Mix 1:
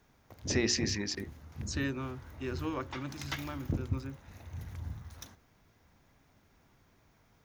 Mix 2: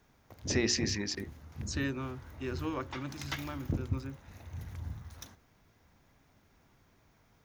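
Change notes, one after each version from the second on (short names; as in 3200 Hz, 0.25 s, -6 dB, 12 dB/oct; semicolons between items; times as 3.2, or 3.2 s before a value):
none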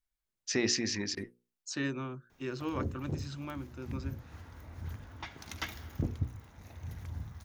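background: entry +2.30 s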